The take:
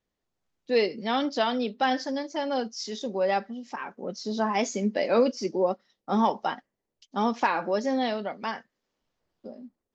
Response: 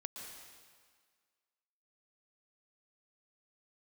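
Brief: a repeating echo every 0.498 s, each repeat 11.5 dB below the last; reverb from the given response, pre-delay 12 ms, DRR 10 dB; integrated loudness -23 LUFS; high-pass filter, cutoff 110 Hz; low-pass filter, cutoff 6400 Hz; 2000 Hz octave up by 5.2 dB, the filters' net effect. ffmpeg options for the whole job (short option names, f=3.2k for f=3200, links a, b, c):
-filter_complex "[0:a]highpass=110,lowpass=6.4k,equalizer=f=2k:t=o:g=6.5,aecho=1:1:498|996|1494:0.266|0.0718|0.0194,asplit=2[a][b];[1:a]atrim=start_sample=2205,adelay=12[c];[b][c]afir=irnorm=-1:irlink=0,volume=-8dB[d];[a][d]amix=inputs=2:normalize=0,volume=3.5dB"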